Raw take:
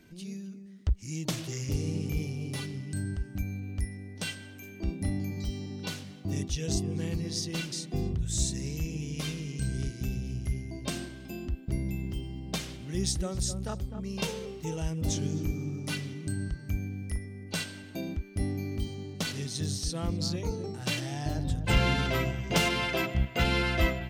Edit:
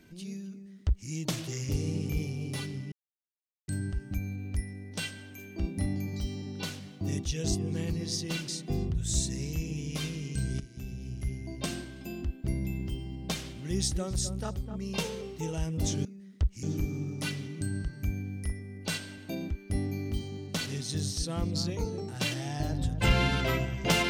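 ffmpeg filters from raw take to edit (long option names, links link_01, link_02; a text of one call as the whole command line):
ffmpeg -i in.wav -filter_complex "[0:a]asplit=5[link_01][link_02][link_03][link_04][link_05];[link_01]atrim=end=2.92,asetpts=PTS-STARTPTS,afade=type=out:start_time=2.916:duration=0.004:curve=hsin,apad=pad_dur=0.76[link_06];[link_02]atrim=start=2.92:end=9.84,asetpts=PTS-STARTPTS,afade=type=in:duration=0.004:curve=hsin,afade=type=out:start_time=6.916:duration=0.004:curve=hsin:silence=0.223872[link_07];[link_03]atrim=start=9.84:end=15.292,asetpts=PTS-STARTPTS,afade=type=in:duration=0.91:silence=0.223872[link_08];[link_04]atrim=start=0.508:end=1.092[link_09];[link_05]atrim=start=15.288[link_10];[link_06][link_07][link_08]concat=n=3:v=0:a=1[link_11];[link_11][link_09]acrossfade=duration=0.004:curve1=hsin:curve2=hsin[link_12];[link_12][link_10]acrossfade=duration=0.004:curve1=hsin:curve2=hsin" out.wav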